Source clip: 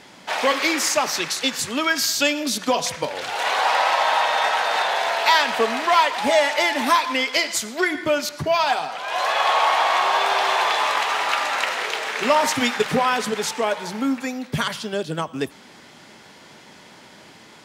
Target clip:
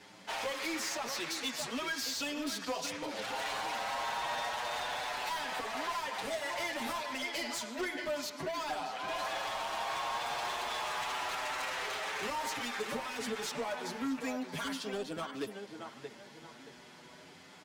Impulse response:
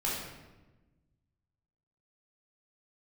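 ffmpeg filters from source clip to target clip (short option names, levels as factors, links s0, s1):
-filter_complex "[0:a]acrossover=split=200|5700[s0][s1][s2];[s0]acompressor=threshold=0.00447:ratio=4[s3];[s1]acompressor=threshold=0.0708:ratio=4[s4];[s2]acompressor=threshold=0.0178:ratio=4[s5];[s3][s4][s5]amix=inputs=3:normalize=0,asplit=2[s6][s7];[s7]adelay=627,lowpass=f=2600:p=1,volume=0.398,asplit=2[s8][s9];[s9]adelay=627,lowpass=f=2600:p=1,volume=0.38,asplit=2[s10][s11];[s11]adelay=627,lowpass=f=2600:p=1,volume=0.38,asplit=2[s12][s13];[s13]adelay=627,lowpass=f=2600:p=1,volume=0.38[s14];[s8][s10][s12][s14]amix=inputs=4:normalize=0[s15];[s6][s15]amix=inputs=2:normalize=0,asoftclip=type=hard:threshold=0.0631,asplit=2[s16][s17];[s17]adelay=7.3,afreqshift=0.33[s18];[s16][s18]amix=inputs=2:normalize=1,volume=0.501"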